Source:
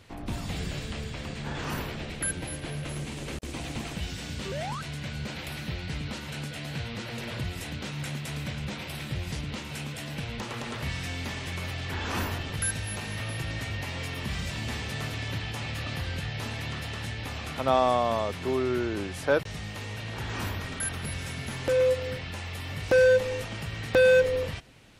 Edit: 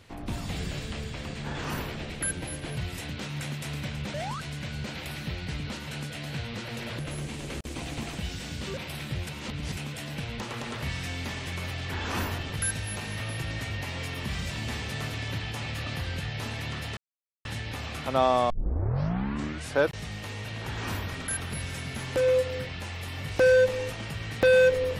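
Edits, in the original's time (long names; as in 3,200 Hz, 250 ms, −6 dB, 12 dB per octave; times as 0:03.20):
0:02.77–0:04.55: swap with 0:07.40–0:08.77
0:09.27–0:09.77: reverse
0:16.97: splice in silence 0.48 s
0:18.02: tape start 1.28 s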